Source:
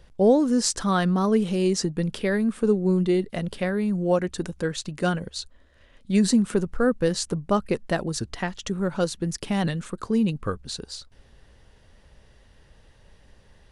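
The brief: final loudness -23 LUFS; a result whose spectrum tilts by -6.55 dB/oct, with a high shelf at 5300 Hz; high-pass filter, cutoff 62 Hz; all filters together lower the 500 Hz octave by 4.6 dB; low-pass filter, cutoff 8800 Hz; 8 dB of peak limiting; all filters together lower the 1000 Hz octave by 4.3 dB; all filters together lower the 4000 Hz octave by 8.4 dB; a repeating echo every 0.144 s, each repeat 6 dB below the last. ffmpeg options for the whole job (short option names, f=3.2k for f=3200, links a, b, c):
-af "highpass=62,lowpass=8.8k,equalizer=f=500:t=o:g=-5,equalizer=f=1k:t=o:g=-3.5,equalizer=f=4k:t=o:g=-8,highshelf=f=5.3k:g=-5,alimiter=limit=-20dB:level=0:latency=1,aecho=1:1:144|288|432|576|720|864:0.501|0.251|0.125|0.0626|0.0313|0.0157,volume=5dB"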